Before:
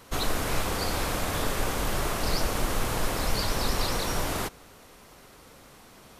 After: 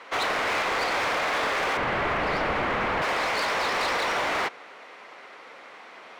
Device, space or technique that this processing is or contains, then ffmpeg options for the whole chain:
megaphone: -filter_complex "[0:a]highpass=110,highpass=540,lowpass=2.8k,equalizer=f=2.1k:t=o:w=0.52:g=5.5,asoftclip=type=hard:threshold=-31.5dB,asettb=1/sr,asplit=3[a][b][c];[a]atrim=end=1.774[d];[b]atrim=start=1.77:end=3.02,asetpts=PTS-STARTPTS,afade=t=in:d=0.004:c=qsin,afade=t=out:st=1.246:d=0.004:c=qsin,bass=f=250:g=13,treble=f=4k:g=-13[e];[c]atrim=start=3.016[f];[d][e]acrossfade=d=0.004:c1=hsin:c2=qsin[g];[g][f]acrossfade=d=0.004:c1=qsin:c2=hsin,volume=9dB"

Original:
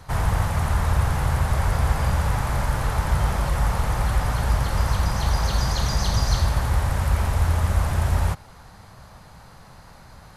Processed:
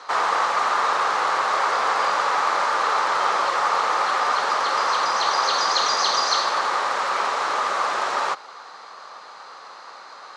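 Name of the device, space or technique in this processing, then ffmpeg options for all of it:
phone speaker on a table: -af "highpass=f=400:w=0.5412,highpass=f=400:w=1.3066,equalizer=f=640:t=q:w=4:g=-3,equalizer=f=1.2k:t=q:w=4:g=9,equalizer=f=4.1k:t=q:w=4:g=4,lowpass=f=6.6k:w=0.5412,lowpass=f=6.6k:w=1.3066,volume=6.5dB"

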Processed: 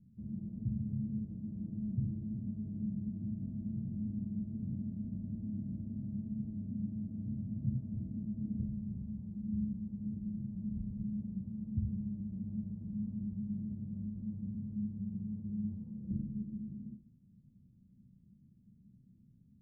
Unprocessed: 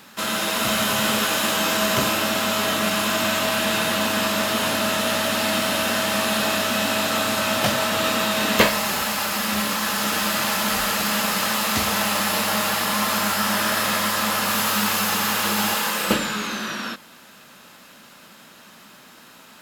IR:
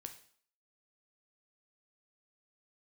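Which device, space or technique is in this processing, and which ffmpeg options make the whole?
club heard from the street: -filter_complex "[0:a]alimiter=limit=-13dB:level=0:latency=1:release=70,lowpass=f=150:w=0.5412,lowpass=f=150:w=1.3066[a];[1:a]atrim=start_sample=2205[b];[a][b]afir=irnorm=-1:irlink=0,volume=7.5dB"

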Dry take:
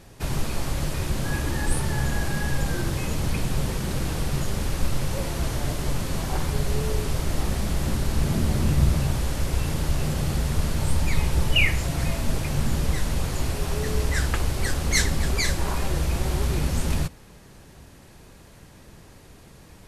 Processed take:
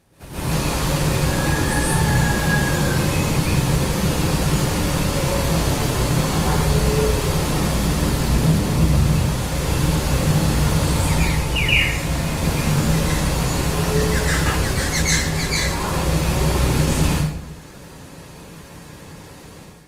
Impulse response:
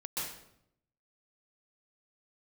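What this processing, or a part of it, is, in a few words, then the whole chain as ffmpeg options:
far-field microphone of a smart speaker: -filter_complex "[1:a]atrim=start_sample=2205[a];[0:a][a]afir=irnorm=-1:irlink=0,highpass=f=86:p=1,dynaudnorm=f=280:g=3:m=11dB,volume=-3dB" -ar 48000 -c:a libopus -b:a 32k

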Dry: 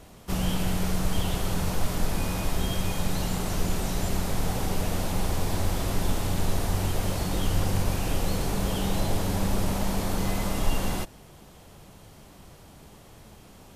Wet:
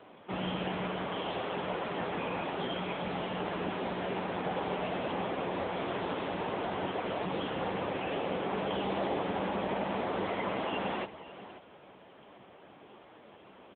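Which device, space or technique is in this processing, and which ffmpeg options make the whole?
satellite phone: -af "highpass=310,lowpass=3.3k,aecho=1:1:536:0.188,volume=3.5dB" -ar 8000 -c:a libopencore_amrnb -b:a 6700

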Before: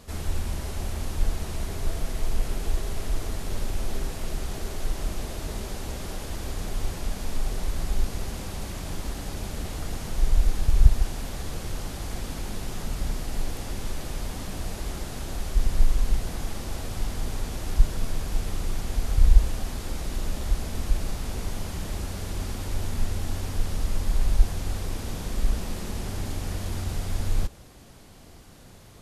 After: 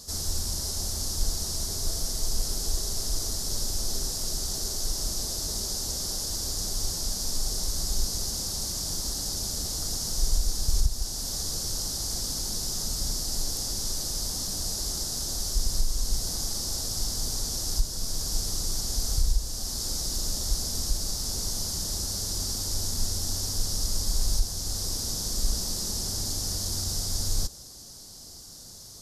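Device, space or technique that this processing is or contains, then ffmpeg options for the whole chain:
over-bright horn tweeter: -af "highshelf=f=3.6k:t=q:w=3:g=13,alimiter=limit=-9dB:level=0:latency=1:release=473,volume=-4dB"

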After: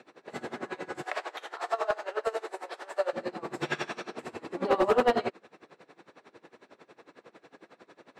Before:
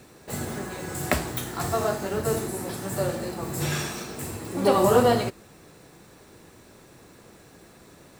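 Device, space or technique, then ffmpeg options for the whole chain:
helicopter radio: -filter_complex "[0:a]asettb=1/sr,asplit=3[a][b][c];[a]atrim=end=1.034[d];[b]atrim=start=1.03:end=3.13,asetpts=PTS-STARTPTS,afade=t=in:d=0.004:c=qsin,afade=t=out:st=2.096:d=0.004:c=qsin,highpass=f=480:w=0.5412,highpass=f=480:w=1.3066[e];[c]atrim=start=3.126[f];[d][e]acrossfade=d=0.004:c1=hsin:c2=qsin[g];[g][f]acrossfade=d=0.004:c1=qsin:c2=hsin,highpass=330,lowpass=3k,aeval=exprs='val(0)*pow(10,-22*(0.5-0.5*cos(2*PI*11*n/s))/20)':c=same,asoftclip=type=hard:threshold=-21.5dB,volume=4.5dB"

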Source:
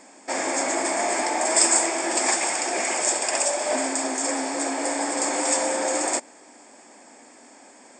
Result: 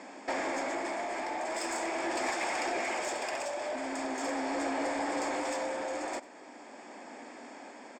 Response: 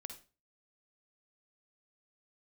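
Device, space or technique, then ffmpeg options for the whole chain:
AM radio: -filter_complex "[0:a]highpass=130,lowpass=3.8k,acompressor=threshold=-32dB:ratio=5,asoftclip=type=tanh:threshold=-27.5dB,tremolo=f=0.41:d=0.35,asplit=2[a][b];[b]adelay=93.29,volume=-17dB,highshelf=f=4k:g=-2.1[c];[a][c]amix=inputs=2:normalize=0,volume=3.5dB"

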